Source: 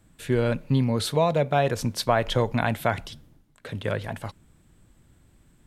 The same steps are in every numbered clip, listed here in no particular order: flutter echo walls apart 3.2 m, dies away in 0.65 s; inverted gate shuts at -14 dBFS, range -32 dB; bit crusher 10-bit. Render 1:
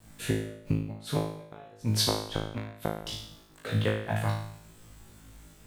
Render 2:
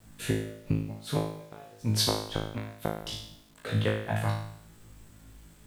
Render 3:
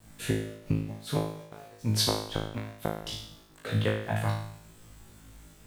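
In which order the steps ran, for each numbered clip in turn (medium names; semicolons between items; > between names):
bit crusher > inverted gate > flutter echo; inverted gate > flutter echo > bit crusher; inverted gate > bit crusher > flutter echo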